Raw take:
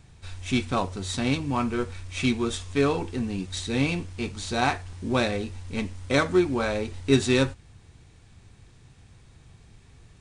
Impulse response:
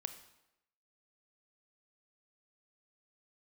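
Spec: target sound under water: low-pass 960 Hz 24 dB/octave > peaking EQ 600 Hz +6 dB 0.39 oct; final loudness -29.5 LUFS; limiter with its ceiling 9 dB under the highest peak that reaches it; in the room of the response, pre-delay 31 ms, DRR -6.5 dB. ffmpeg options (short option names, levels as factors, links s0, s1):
-filter_complex "[0:a]alimiter=limit=0.15:level=0:latency=1,asplit=2[s0][s1];[1:a]atrim=start_sample=2205,adelay=31[s2];[s1][s2]afir=irnorm=-1:irlink=0,volume=2.66[s3];[s0][s3]amix=inputs=2:normalize=0,lowpass=f=960:w=0.5412,lowpass=f=960:w=1.3066,equalizer=f=600:t=o:w=0.39:g=6,volume=0.422"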